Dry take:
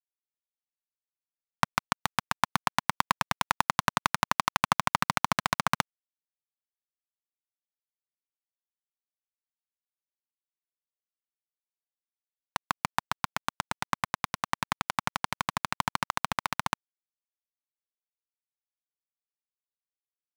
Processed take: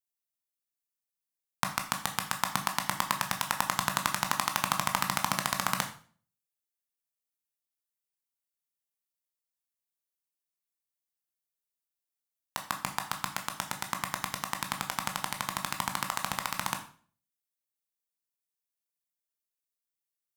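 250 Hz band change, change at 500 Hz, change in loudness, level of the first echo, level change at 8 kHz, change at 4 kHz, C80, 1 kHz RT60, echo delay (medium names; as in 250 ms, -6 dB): -2.5 dB, -3.0 dB, -1.5 dB, no echo, +4.0 dB, -0.5 dB, 14.5 dB, 0.40 s, no echo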